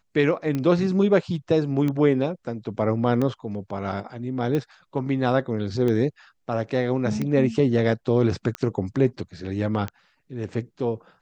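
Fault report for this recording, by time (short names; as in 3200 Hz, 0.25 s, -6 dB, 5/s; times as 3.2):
tick 45 rpm -15 dBFS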